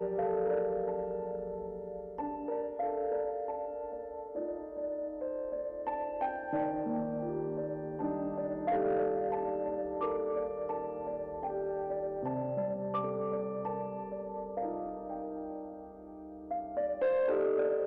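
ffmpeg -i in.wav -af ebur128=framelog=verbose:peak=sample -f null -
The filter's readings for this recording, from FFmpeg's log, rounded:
Integrated loudness:
  I:         -35.2 LUFS
  Threshold: -45.4 LUFS
Loudness range:
  LRA:         4.0 LU
  Threshold: -55.8 LUFS
  LRA low:   -37.8 LUFS
  LRA high:  -33.8 LUFS
Sample peak:
  Peak:      -24.0 dBFS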